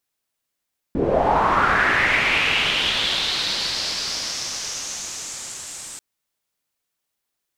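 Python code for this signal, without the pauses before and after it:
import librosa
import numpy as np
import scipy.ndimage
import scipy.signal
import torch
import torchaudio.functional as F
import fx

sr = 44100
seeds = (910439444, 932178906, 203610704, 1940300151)

y = fx.riser_noise(sr, seeds[0], length_s=5.04, colour='white', kind='lowpass', start_hz=280.0, end_hz=8000.0, q=3.7, swell_db=-29.5, law='linear')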